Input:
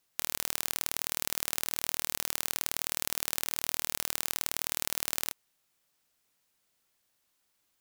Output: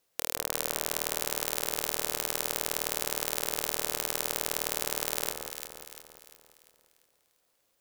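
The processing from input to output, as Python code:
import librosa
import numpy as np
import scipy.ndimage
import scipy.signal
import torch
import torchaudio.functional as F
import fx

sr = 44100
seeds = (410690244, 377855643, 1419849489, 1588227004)

p1 = fx.peak_eq(x, sr, hz=510.0, db=10.0, octaves=0.87)
y = p1 + fx.echo_alternate(p1, sr, ms=173, hz=1400.0, feedback_pct=67, wet_db=-4, dry=0)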